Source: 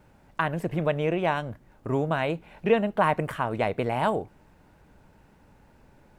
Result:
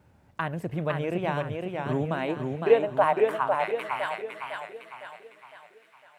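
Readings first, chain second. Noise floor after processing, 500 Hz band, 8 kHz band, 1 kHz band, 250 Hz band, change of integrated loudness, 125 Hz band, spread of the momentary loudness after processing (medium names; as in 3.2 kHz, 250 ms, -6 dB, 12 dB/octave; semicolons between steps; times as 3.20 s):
-60 dBFS, +1.0 dB, no reading, -0.5 dB, -3.0 dB, -0.5 dB, -2.0 dB, 18 LU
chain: high-pass sweep 81 Hz -> 1.8 kHz, 1.40–3.89 s; feedback echo behind a high-pass 363 ms, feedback 78%, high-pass 3.7 kHz, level -17 dB; modulated delay 507 ms, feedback 46%, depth 97 cents, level -4 dB; trim -4.5 dB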